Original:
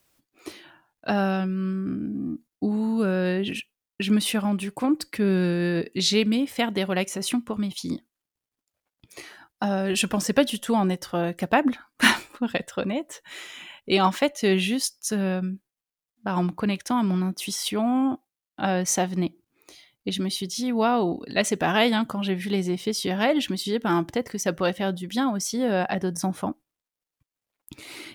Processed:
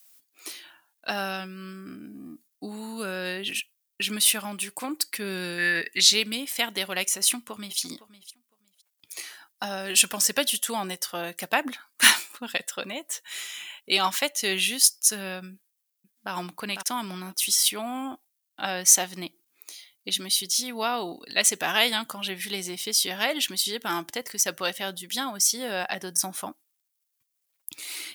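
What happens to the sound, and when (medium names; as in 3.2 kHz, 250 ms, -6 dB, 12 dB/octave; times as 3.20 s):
5.58–6.01 s: peaking EQ 1.9 kHz +14 dB 0.71 oct
7.18–7.79 s: echo throw 510 ms, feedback 15%, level -16.5 dB
15.54–16.32 s: echo throw 500 ms, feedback 20%, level -7 dB
whole clip: tilt EQ +4.5 dB/octave; trim -3.5 dB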